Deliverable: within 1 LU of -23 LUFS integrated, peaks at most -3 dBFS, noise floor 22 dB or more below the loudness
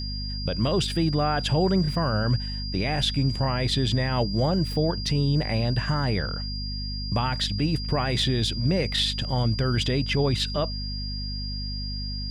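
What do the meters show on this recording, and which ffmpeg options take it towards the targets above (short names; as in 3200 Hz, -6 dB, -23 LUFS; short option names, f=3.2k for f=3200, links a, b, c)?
hum 50 Hz; harmonics up to 250 Hz; hum level -30 dBFS; steady tone 4800 Hz; tone level -34 dBFS; loudness -25.5 LUFS; peak -12.5 dBFS; loudness target -23.0 LUFS
-> -af "bandreject=f=50:t=h:w=6,bandreject=f=100:t=h:w=6,bandreject=f=150:t=h:w=6,bandreject=f=200:t=h:w=6,bandreject=f=250:t=h:w=6"
-af "bandreject=f=4.8k:w=30"
-af "volume=2.5dB"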